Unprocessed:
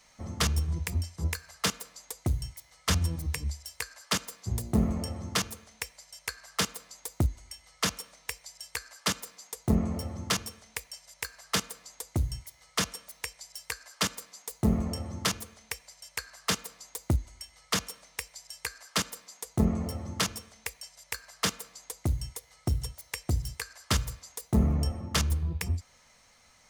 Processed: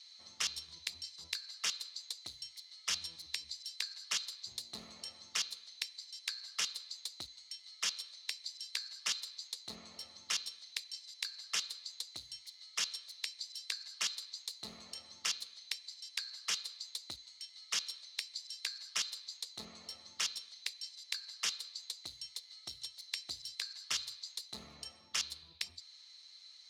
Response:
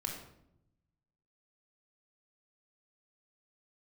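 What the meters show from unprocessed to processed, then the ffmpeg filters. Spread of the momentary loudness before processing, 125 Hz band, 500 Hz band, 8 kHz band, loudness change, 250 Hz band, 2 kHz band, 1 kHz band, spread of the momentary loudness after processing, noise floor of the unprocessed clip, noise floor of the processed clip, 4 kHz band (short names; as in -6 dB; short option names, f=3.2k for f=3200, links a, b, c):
13 LU, under -35 dB, -22.5 dB, -5.5 dB, -7.5 dB, -29.5 dB, -7.5 dB, -15.0 dB, 11 LU, -61 dBFS, -59 dBFS, -1.5 dB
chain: -af "bandpass=f=4.1k:t=q:w=10:csg=0,afftfilt=real='re*lt(hypot(re,im),0.0141)':imag='im*lt(hypot(re,im),0.0141)':win_size=1024:overlap=0.75,volume=16dB"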